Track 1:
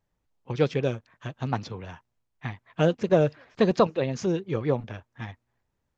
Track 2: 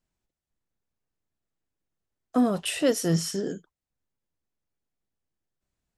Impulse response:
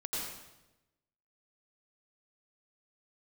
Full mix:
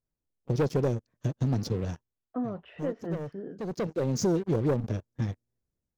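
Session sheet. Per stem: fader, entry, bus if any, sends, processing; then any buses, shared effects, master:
-6.0 dB, 0.00 s, no send, band shelf 1600 Hz -16 dB 2.6 oct; sample leveller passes 3; AGC gain up to 5 dB; auto duck -19 dB, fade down 0.40 s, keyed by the second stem
-9.0 dB, 0.00 s, no send, Bessel low-pass 1400 Hz, order 4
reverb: off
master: compressor 3:1, threshold -25 dBFS, peak gain reduction 7.5 dB

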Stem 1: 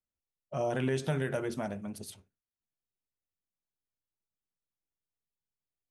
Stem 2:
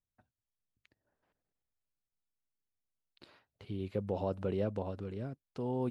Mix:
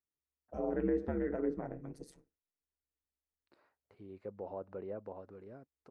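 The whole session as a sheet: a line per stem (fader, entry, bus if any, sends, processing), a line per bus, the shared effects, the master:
-5.0 dB, 0.00 s, no send, small resonant body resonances 370/1900 Hz, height 13 dB; ring modulator 70 Hz
-6.0 dB, 0.30 s, no send, tone controls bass -12 dB, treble -10 dB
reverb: off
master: treble ducked by the level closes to 1900 Hz, closed at -36 dBFS; bell 3200 Hz -14.5 dB 0.81 oct

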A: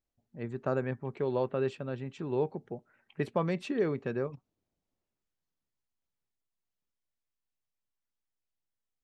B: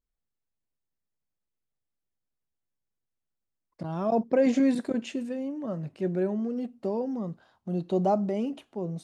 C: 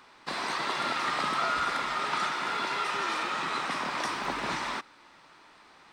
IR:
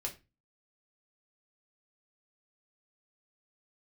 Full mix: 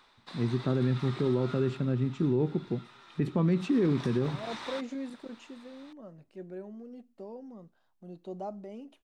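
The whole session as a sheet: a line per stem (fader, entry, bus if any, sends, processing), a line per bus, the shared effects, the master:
-2.5 dB, 0.00 s, send -8 dB, resonant low shelf 400 Hz +10 dB, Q 1.5
-13.5 dB, 0.35 s, no send, bell 130 Hz -6.5 dB 0.96 oct
1.56 s -6.5 dB -> 1.92 s -16.5 dB -> 3.39 s -16.5 dB -> 3.86 s -3.5 dB, 0.00 s, no send, bell 3700 Hz +10.5 dB 0.23 oct; auto duck -9 dB, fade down 0.35 s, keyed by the first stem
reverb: on, RT60 0.25 s, pre-delay 4 ms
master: limiter -18.5 dBFS, peak gain reduction 7 dB

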